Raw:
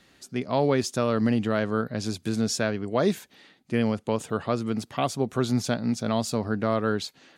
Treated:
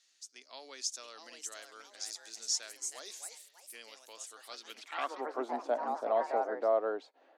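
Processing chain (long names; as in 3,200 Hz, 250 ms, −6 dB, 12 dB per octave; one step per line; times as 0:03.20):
elliptic high-pass filter 270 Hz, stop band 50 dB
band-pass filter sweep 6,200 Hz → 670 Hz, 0:04.40–0:05.44
delay with pitch and tempo change per echo 733 ms, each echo +3 semitones, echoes 3, each echo −6 dB
level +1 dB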